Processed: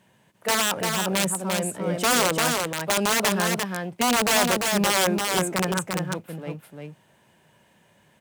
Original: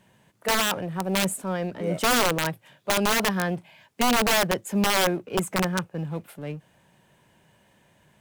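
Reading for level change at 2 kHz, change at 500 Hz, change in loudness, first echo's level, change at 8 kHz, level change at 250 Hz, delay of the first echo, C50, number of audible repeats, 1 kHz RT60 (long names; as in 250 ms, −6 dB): +1.5 dB, +1.0 dB, +2.0 dB, −4.0 dB, +5.0 dB, +0.5 dB, 346 ms, no reverb audible, 1, no reverb audible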